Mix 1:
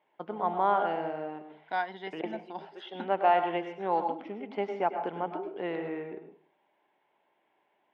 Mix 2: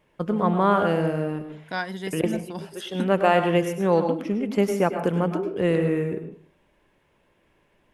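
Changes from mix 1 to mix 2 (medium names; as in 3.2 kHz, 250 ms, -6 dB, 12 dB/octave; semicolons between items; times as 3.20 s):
first voice +3.0 dB; master: remove cabinet simulation 490–3100 Hz, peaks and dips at 510 Hz -8 dB, 800 Hz +7 dB, 1.2 kHz -7 dB, 1.7 kHz -6 dB, 2.6 kHz -7 dB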